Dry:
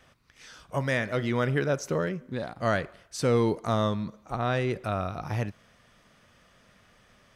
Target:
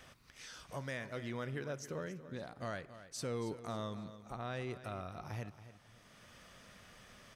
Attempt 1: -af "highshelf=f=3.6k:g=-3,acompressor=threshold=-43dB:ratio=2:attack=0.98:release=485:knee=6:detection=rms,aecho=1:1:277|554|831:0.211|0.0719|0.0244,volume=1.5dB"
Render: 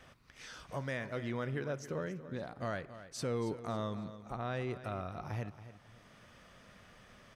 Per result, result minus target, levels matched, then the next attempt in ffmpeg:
8000 Hz band -4.5 dB; compressor: peak gain reduction -4 dB
-af "highshelf=f=3.6k:g=5,acompressor=threshold=-43dB:ratio=2:attack=0.98:release=485:knee=6:detection=rms,aecho=1:1:277|554|831:0.211|0.0719|0.0244,volume=1.5dB"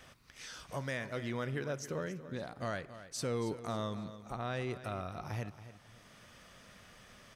compressor: peak gain reduction -3.5 dB
-af "highshelf=f=3.6k:g=5,acompressor=threshold=-50.5dB:ratio=2:attack=0.98:release=485:knee=6:detection=rms,aecho=1:1:277|554|831:0.211|0.0719|0.0244,volume=1.5dB"

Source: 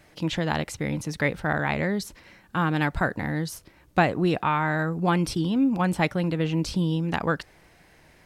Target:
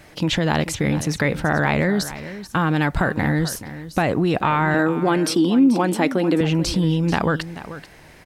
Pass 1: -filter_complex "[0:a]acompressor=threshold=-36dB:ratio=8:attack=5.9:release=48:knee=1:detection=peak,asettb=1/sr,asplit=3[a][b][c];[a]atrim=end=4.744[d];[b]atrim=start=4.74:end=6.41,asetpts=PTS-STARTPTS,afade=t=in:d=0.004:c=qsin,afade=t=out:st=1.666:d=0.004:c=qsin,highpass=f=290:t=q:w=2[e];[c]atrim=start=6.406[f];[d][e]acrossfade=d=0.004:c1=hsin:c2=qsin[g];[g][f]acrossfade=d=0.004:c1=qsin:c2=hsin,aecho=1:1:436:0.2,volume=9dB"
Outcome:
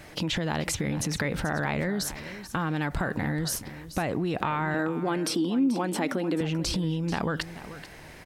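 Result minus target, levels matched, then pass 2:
compressor: peak gain reduction +9 dB
-filter_complex "[0:a]acompressor=threshold=-25.5dB:ratio=8:attack=5.9:release=48:knee=1:detection=peak,asettb=1/sr,asplit=3[a][b][c];[a]atrim=end=4.744[d];[b]atrim=start=4.74:end=6.41,asetpts=PTS-STARTPTS,afade=t=in:d=0.004:c=qsin,afade=t=out:st=1.666:d=0.004:c=qsin,highpass=f=290:t=q:w=2[e];[c]atrim=start=6.406[f];[d][e]acrossfade=d=0.004:c1=hsin:c2=qsin[g];[g][f]acrossfade=d=0.004:c1=qsin:c2=hsin,aecho=1:1:436:0.2,volume=9dB"

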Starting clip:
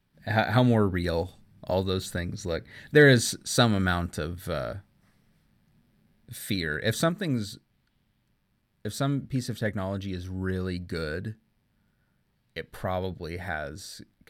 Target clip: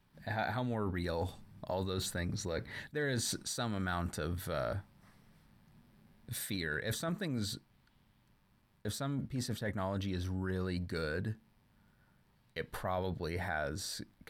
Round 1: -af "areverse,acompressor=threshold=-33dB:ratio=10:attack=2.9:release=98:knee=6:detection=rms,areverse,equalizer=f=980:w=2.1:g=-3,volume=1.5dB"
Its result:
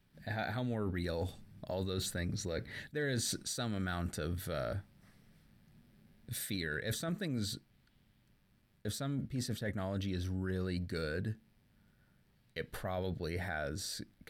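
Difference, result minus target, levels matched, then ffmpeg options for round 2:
1000 Hz band -4.0 dB
-af "areverse,acompressor=threshold=-33dB:ratio=10:attack=2.9:release=98:knee=6:detection=rms,areverse,equalizer=f=980:w=2.1:g=6,volume=1.5dB"

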